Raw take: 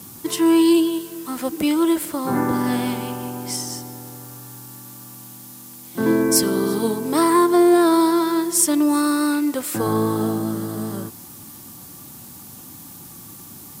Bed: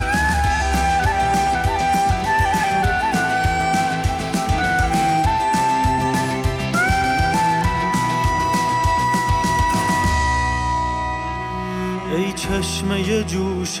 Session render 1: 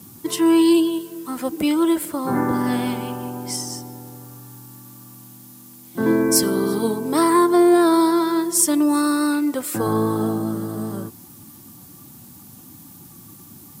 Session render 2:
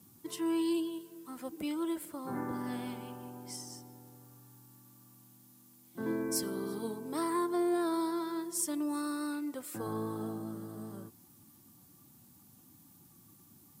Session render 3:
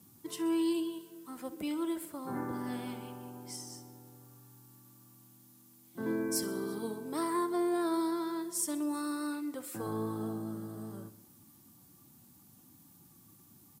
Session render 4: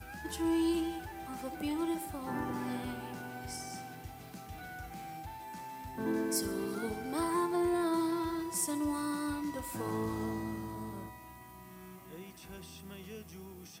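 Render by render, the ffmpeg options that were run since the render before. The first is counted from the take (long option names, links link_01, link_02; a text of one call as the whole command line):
ffmpeg -i in.wav -af "afftdn=noise_reduction=6:noise_floor=-40" out.wav
ffmpeg -i in.wav -af "volume=-16.5dB" out.wav
ffmpeg -i in.wav -af "aecho=1:1:64|128|192|256|320|384:0.158|0.0919|0.0533|0.0309|0.0179|0.0104" out.wav
ffmpeg -i in.wav -i bed.wav -filter_complex "[1:a]volume=-27.5dB[link_01];[0:a][link_01]amix=inputs=2:normalize=0" out.wav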